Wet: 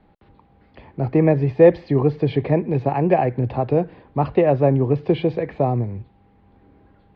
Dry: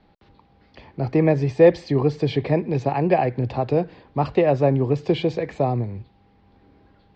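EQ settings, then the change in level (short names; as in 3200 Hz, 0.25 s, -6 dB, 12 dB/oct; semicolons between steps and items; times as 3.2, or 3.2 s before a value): air absorption 330 m; +2.5 dB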